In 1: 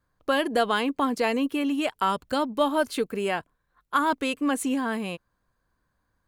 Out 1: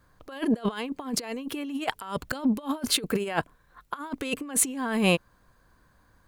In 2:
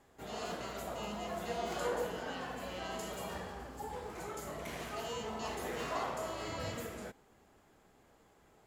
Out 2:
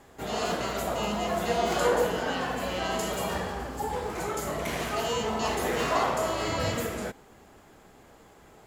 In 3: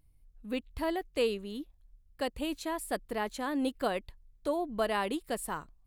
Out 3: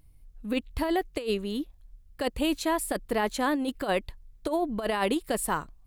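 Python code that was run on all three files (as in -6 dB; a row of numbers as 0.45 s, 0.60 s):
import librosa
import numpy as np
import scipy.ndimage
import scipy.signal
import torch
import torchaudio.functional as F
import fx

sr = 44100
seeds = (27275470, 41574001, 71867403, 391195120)

y = fx.over_compress(x, sr, threshold_db=-32.0, ratio=-0.5)
y = y * 10.0 ** (-30 / 20.0) / np.sqrt(np.mean(np.square(y)))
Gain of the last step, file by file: +5.0 dB, +11.5 dB, +6.5 dB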